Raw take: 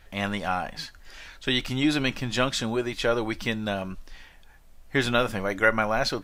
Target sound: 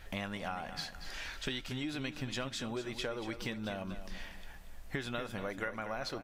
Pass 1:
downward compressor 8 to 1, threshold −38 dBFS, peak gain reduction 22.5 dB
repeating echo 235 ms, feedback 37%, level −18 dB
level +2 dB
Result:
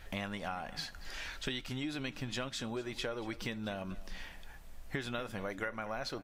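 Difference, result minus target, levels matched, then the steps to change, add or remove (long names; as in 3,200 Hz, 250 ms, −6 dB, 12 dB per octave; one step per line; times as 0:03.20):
echo-to-direct −7 dB
change: repeating echo 235 ms, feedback 37%, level −11 dB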